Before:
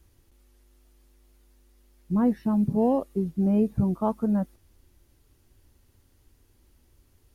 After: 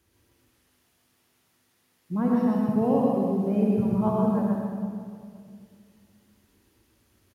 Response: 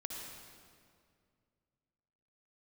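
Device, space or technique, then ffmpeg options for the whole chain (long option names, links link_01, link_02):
PA in a hall: -filter_complex "[0:a]highpass=120,equalizer=frequency=2200:width_type=o:width=2.2:gain=4,aecho=1:1:130:0.631[link_01];[1:a]atrim=start_sample=2205[link_02];[link_01][link_02]afir=irnorm=-1:irlink=0"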